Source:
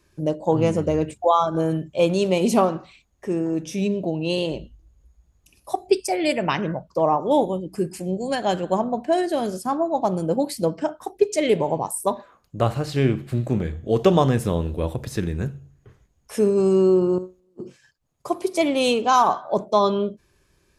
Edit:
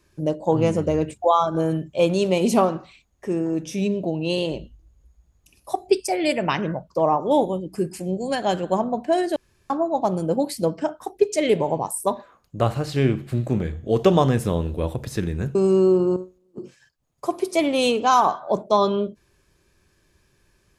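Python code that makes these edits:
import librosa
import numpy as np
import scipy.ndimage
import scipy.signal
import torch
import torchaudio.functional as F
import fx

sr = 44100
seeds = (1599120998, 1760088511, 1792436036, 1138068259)

y = fx.edit(x, sr, fx.room_tone_fill(start_s=9.36, length_s=0.34),
    fx.cut(start_s=15.55, length_s=1.02), tone=tone)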